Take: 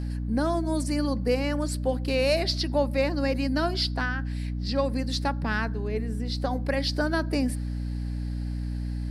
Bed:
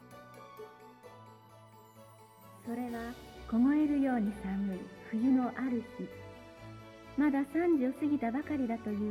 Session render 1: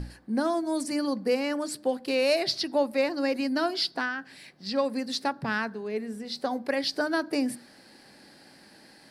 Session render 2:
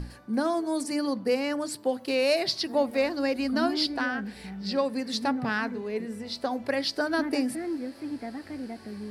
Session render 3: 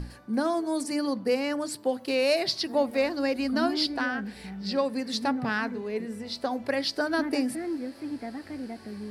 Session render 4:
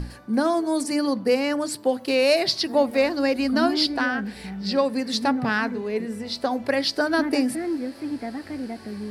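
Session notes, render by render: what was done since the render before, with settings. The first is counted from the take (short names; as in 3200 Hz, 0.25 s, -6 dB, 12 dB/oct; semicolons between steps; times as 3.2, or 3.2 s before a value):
notches 60/120/180/240/300 Hz
add bed -3.5 dB
nothing audible
gain +5 dB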